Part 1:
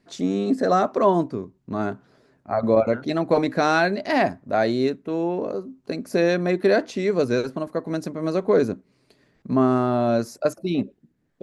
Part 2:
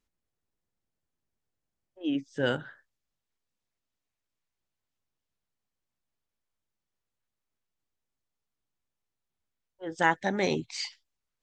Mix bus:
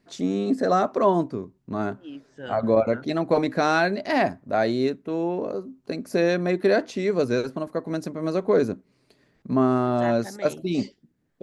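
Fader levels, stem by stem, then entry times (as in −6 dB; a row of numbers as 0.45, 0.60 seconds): −1.5, −10.0 decibels; 0.00, 0.00 seconds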